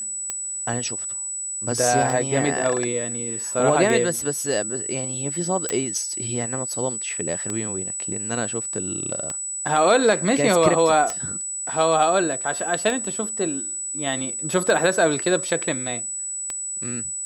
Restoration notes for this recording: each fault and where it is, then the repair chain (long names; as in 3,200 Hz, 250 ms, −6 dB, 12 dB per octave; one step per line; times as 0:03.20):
scratch tick 33 1/3 rpm −12 dBFS
whistle 7,900 Hz −27 dBFS
0:05.69: click −10 dBFS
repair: click removal
notch filter 7,900 Hz, Q 30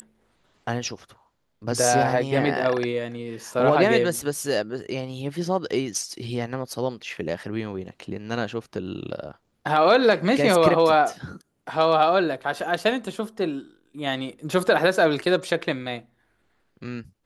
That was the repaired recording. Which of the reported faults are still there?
none of them is left